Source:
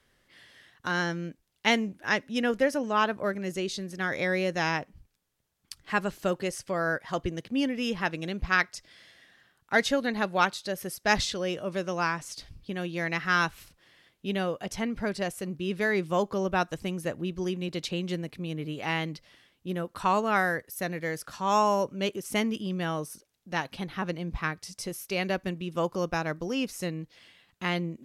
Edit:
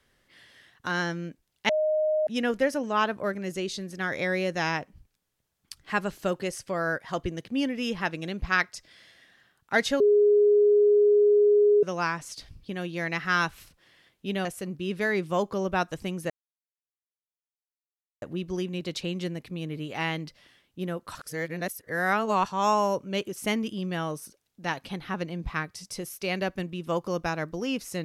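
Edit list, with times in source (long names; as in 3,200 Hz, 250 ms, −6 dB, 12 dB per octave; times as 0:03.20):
0:01.69–0:02.27: beep over 618 Hz −21.5 dBFS
0:10.00–0:11.83: beep over 414 Hz −16 dBFS
0:14.45–0:15.25: remove
0:17.10: splice in silence 1.92 s
0:20.03–0:21.34: reverse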